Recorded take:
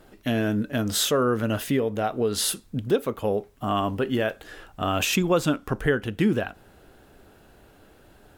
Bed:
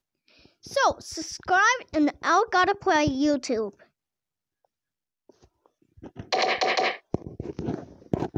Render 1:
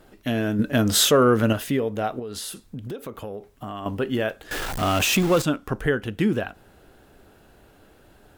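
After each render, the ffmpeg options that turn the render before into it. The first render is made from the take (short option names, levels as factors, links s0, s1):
-filter_complex "[0:a]asettb=1/sr,asplit=3[s0][s1][s2];[s0]atrim=end=0.594[s3];[s1]atrim=start=0.59:end=1.53,asetpts=PTS-STARTPTS,afade=t=in:d=0.004:c=qsin,afade=t=out:st=0.936:d=0.004:c=qsin,acontrast=43[s4];[s2]atrim=start=1.526[s5];[s3][s4]acrossfade=d=0.004:c1=hsin:c2=qsin[s6];[s6][s5]acrossfade=d=0.004:c1=qsin:c2=hsin,asettb=1/sr,asplit=3[s7][s8][s9];[s7]atrim=end=2.194[s10];[s8]atrim=start=2.19:end=3.86,asetpts=PTS-STARTPTS,afade=t=in:d=0.004:c=qsin,afade=t=out:st=1.666:d=0.004:c=qsin,acompressor=threshold=0.0316:ratio=6:attack=3.2:release=140:knee=1:detection=peak[s11];[s9]atrim=start=3.856[s12];[s10][s11]acrossfade=d=0.004:c1=hsin:c2=qsin[s13];[s13][s12]acrossfade=d=0.004:c1=qsin:c2=hsin,asettb=1/sr,asplit=3[s14][s15][s16];[s14]atrim=end=4.514[s17];[s15]atrim=start=4.51:end=5.42,asetpts=PTS-STARTPTS,afade=t=in:d=0.004:c=qsin,afade=t=out:st=0.906:d=0.004:c=qsin,aeval=exprs='val(0)+0.5*0.0631*sgn(val(0))':c=same[s18];[s16]atrim=start=5.416[s19];[s17][s18]acrossfade=d=0.004:c1=hsin:c2=qsin[s20];[s20][s19]acrossfade=d=0.004:c1=qsin:c2=hsin"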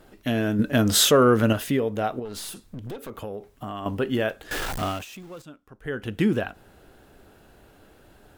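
-filter_complex "[0:a]asettb=1/sr,asplit=3[s0][s1][s2];[s0]atrim=end=2.254[s3];[s1]atrim=start=2.25:end=3.1,asetpts=PTS-STARTPTS,afade=t=in:d=0.004:c=qsin,afade=t=out:st=0.846:d=0.004:c=qsin,aeval=exprs='clip(val(0),-1,0.0133)':c=same[s4];[s2]atrim=start=3.096[s5];[s3][s4]acrossfade=d=0.004:c1=hsin:c2=qsin[s6];[s6][s5]acrossfade=d=0.004:c1=qsin:c2=hsin,asplit=3[s7][s8][s9];[s7]atrim=end=5.05,asetpts=PTS-STARTPTS,afade=t=out:st=4.71:d=0.34:silence=0.0841395[s10];[s8]atrim=start=5.05:end=5.8,asetpts=PTS-STARTPTS,volume=0.0841[s11];[s9]atrim=start=5.8,asetpts=PTS-STARTPTS,afade=t=in:d=0.34:silence=0.0841395[s12];[s10][s11][s12]concat=n=3:v=0:a=1"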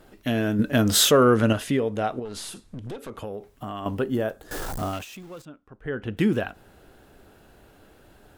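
-filter_complex "[0:a]asettb=1/sr,asplit=3[s0][s1][s2];[s0]atrim=end=1.344[s3];[s1]atrim=start=1.34:end=3.27,asetpts=PTS-STARTPTS,afade=t=in:d=0.004:c=qsin,afade=t=out:st=1.926:d=0.004:c=qsin,lowpass=f=11000:w=0.5412,lowpass=f=11000:w=1.3066[s4];[s2]atrim=start=3.266[s5];[s3][s4]acrossfade=d=0.004:c1=hsin:c2=qsin[s6];[s6][s5]acrossfade=d=0.004:c1=qsin:c2=hsin,asettb=1/sr,asplit=3[s7][s8][s9];[s7]atrim=end=4.024[s10];[s8]atrim=start=4.02:end=4.93,asetpts=PTS-STARTPTS,afade=t=in:d=0.004:c=qsin,afade=t=out:st=0.906:d=0.004:c=qsin,equalizer=f=2600:w=0.87:g=-11.5[s11];[s9]atrim=start=4.926[s12];[s10][s11]acrossfade=d=0.004:c1=hsin:c2=qsin[s13];[s13][s12]acrossfade=d=0.004:c1=qsin:c2=hsin,asettb=1/sr,asplit=3[s14][s15][s16];[s14]atrim=end=5.454[s17];[s15]atrim=start=5.45:end=6.17,asetpts=PTS-STARTPTS,afade=t=in:d=0.004:c=qsin,afade=t=out:st=0.716:d=0.004:c=qsin,aemphasis=mode=reproduction:type=75fm[s18];[s16]atrim=start=6.166[s19];[s17][s18]acrossfade=d=0.004:c1=hsin:c2=qsin[s20];[s20][s19]acrossfade=d=0.004:c1=qsin:c2=hsin"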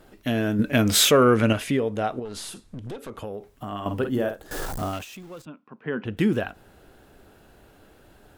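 -filter_complex "[0:a]asettb=1/sr,asplit=3[s0][s1][s2];[s0]atrim=end=0.664[s3];[s1]atrim=start=0.66:end=1.71,asetpts=PTS-STARTPTS,afade=t=in:d=0.004:c=qsin,afade=t=out:st=1.046:d=0.004:c=qsin,equalizer=f=2300:w=5:g=11.5[s4];[s2]atrim=start=1.706[s5];[s3][s4]acrossfade=d=0.004:c1=hsin:c2=qsin[s6];[s6][s5]acrossfade=d=0.004:c1=qsin:c2=hsin,asettb=1/sr,asplit=3[s7][s8][s9];[s7]atrim=end=3.674[s10];[s8]atrim=start=3.67:end=4.66,asetpts=PTS-STARTPTS,afade=t=in:d=0.004:c=qsin,afade=t=out:st=0.986:d=0.004:c=qsin,asplit=2[s11][s12];[s12]adelay=49,volume=0.447[s13];[s11][s13]amix=inputs=2:normalize=0,atrim=end_sample=43659[s14];[s9]atrim=start=4.656[s15];[s10][s14]acrossfade=d=0.004:c1=hsin:c2=qsin[s16];[s16][s15]acrossfade=d=0.004:c1=qsin:c2=hsin,asettb=1/sr,asplit=3[s17][s18][s19];[s17]atrim=end=5.464[s20];[s18]atrim=start=5.46:end=6.05,asetpts=PTS-STARTPTS,afade=t=in:d=0.004:c=qsin,afade=t=out:st=0.586:d=0.004:c=qsin,highpass=f=160:w=0.5412,highpass=f=160:w=1.3066,equalizer=f=160:t=q:w=4:g=7,equalizer=f=230:t=q:w=4:g=8,equalizer=f=1000:t=q:w=4:g=9,equalizer=f=2500:t=q:w=4:g=9,lowpass=f=5400:w=0.5412,lowpass=f=5400:w=1.3066[s21];[s19]atrim=start=6.046[s22];[s20][s21]acrossfade=d=0.004:c1=hsin:c2=qsin[s23];[s23][s22]acrossfade=d=0.004:c1=qsin:c2=hsin"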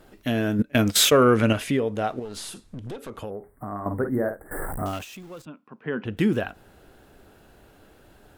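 -filter_complex "[0:a]asettb=1/sr,asplit=3[s0][s1][s2];[s0]atrim=end=0.624[s3];[s1]atrim=start=0.62:end=1.24,asetpts=PTS-STARTPTS,afade=t=in:d=0.004:c=qsin,afade=t=out:st=0.616:d=0.004:c=qsin,agate=range=0.1:threshold=0.0794:ratio=16:release=100:detection=peak[s4];[s2]atrim=start=1.236[s5];[s3][s4]acrossfade=d=0.004:c1=hsin:c2=qsin[s6];[s6][s5]acrossfade=d=0.004:c1=qsin:c2=hsin,asettb=1/sr,asplit=3[s7][s8][s9];[s7]atrim=end=1.954[s10];[s8]atrim=start=1.95:end=2.37,asetpts=PTS-STARTPTS,afade=t=in:d=0.004:c=qsin,afade=t=out:st=0.416:d=0.004:c=qsin,aeval=exprs='sgn(val(0))*max(abs(val(0))-0.002,0)':c=same[s11];[s9]atrim=start=2.366[s12];[s10][s11]acrossfade=d=0.004:c1=hsin:c2=qsin[s13];[s13][s12]acrossfade=d=0.004:c1=qsin:c2=hsin,asettb=1/sr,asplit=3[s14][s15][s16];[s14]atrim=end=3.304[s17];[s15]atrim=start=3.3:end=4.86,asetpts=PTS-STARTPTS,afade=t=in:d=0.004:c=qsin,afade=t=out:st=1.556:d=0.004:c=qsin,asuperstop=centerf=4200:order=20:qfactor=0.71[s18];[s16]atrim=start=4.856[s19];[s17][s18]acrossfade=d=0.004:c1=hsin:c2=qsin[s20];[s20][s19]acrossfade=d=0.004:c1=qsin:c2=hsin"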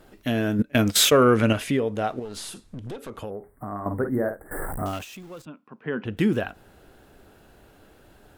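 -af anull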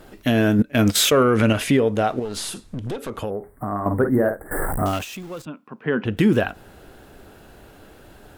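-af "alimiter=limit=0.178:level=0:latency=1:release=91,acontrast=79"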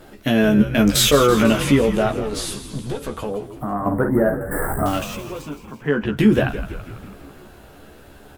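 -filter_complex "[0:a]asplit=2[s0][s1];[s1]adelay=14,volume=0.631[s2];[s0][s2]amix=inputs=2:normalize=0,asplit=8[s3][s4][s5][s6][s7][s8][s9][s10];[s4]adelay=165,afreqshift=-82,volume=0.266[s11];[s5]adelay=330,afreqshift=-164,volume=0.162[s12];[s6]adelay=495,afreqshift=-246,volume=0.0989[s13];[s7]adelay=660,afreqshift=-328,volume=0.0603[s14];[s8]adelay=825,afreqshift=-410,volume=0.0367[s15];[s9]adelay=990,afreqshift=-492,volume=0.0224[s16];[s10]adelay=1155,afreqshift=-574,volume=0.0136[s17];[s3][s11][s12][s13][s14][s15][s16][s17]amix=inputs=8:normalize=0"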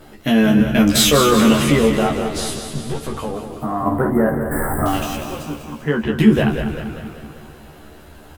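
-filter_complex "[0:a]asplit=2[s0][s1];[s1]adelay=13,volume=0.708[s2];[s0][s2]amix=inputs=2:normalize=0,aecho=1:1:195|390|585|780|975|1170|1365:0.355|0.199|0.111|0.0623|0.0349|0.0195|0.0109"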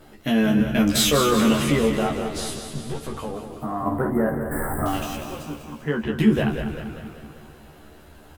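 -af "volume=0.531"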